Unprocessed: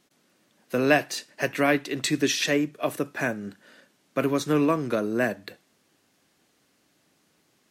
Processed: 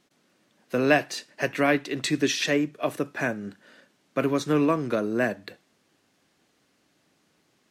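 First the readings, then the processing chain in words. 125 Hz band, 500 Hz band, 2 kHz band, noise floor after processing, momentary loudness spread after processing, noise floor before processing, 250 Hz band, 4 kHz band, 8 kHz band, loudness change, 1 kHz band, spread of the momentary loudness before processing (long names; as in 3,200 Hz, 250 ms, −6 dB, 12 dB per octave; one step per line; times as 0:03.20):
0.0 dB, 0.0 dB, −0.5 dB, −68 dBFS, 9 LU, −68 dBFS, 0.0 dB, −1.0 dB, −2.5 dB, 0.0 dB, 0.0 dB, 10 LU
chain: high-shelf EQ 9,800 Hz −9.5 dB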